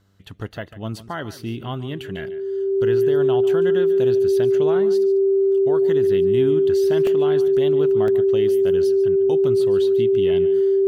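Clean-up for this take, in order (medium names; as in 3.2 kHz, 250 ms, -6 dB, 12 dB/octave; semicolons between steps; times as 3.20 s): de-hum 97.8 Hz, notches 7; band-stop 390 Hz, Q 30; interpolate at 7.07/8.08 s, 1.7 ms; inverse comb 145 ms -15.5 dB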